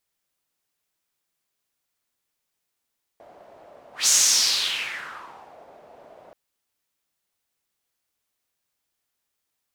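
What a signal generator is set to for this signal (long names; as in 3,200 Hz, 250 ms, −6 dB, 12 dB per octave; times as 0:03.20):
pass-by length 3.13 s, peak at 0:00.88, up 0.16 s, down 1.68 s, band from 640 Hz, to 6,600 Hz, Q 3.7, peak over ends 32 dB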